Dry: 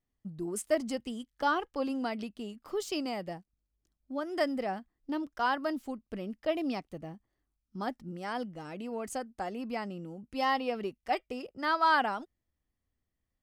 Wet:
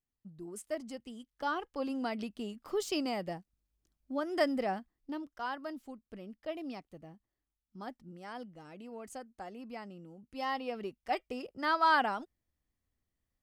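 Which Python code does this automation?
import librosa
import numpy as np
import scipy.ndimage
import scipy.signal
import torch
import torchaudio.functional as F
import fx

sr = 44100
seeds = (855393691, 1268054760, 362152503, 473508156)

y = fx.gain(x, sr, db=fx.line((1.02, -9.0), (2.36, 0.5), (4.73, 0.5), (5.35, -8.5), (10.12, -8.5), (11.39, -1.0)))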